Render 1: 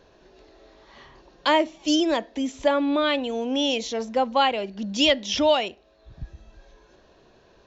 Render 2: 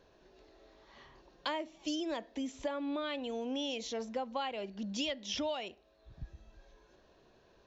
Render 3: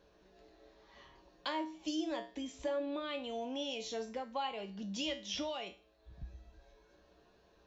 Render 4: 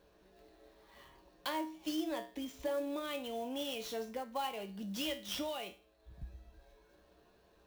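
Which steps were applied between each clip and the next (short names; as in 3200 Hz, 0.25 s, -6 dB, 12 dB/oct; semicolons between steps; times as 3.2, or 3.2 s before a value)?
compressor 5:1, threshold -25 dBFS, peak gain reduction 10 dB; gain -8.5 dB
resonator 63 Hz, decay 0.37 s, harmonics odd, mix 80%; gain +7 dB
clock jitter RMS 0.02 ms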